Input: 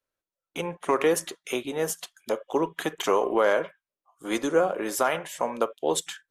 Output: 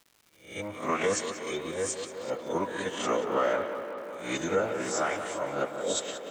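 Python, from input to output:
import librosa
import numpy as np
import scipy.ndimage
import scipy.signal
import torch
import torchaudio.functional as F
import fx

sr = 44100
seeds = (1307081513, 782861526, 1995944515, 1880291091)

y = fx.spec_swells(x, sr, rise_s=0.44)
y = fx.high_shelf(y, sr, hz=8000.0, db=5.5)
y = fx.notch(y, sr, hz=730.0, q=12.0)
y = fx.pitch_keep_formants(y, sr, semitones=-9.0)
y = fx.echo_tape(y, sr, ms=183, feedback_pct=89, wet_db=-7.5, lp_hz=3200.0, drive_db=16.0, wow_cents=22)
y = fx.dmg_crackle(y, sr, seeds[0], per_s=310.0, level_db=-41.0)
y = y * librosa.db_to_amplitude(-5.5)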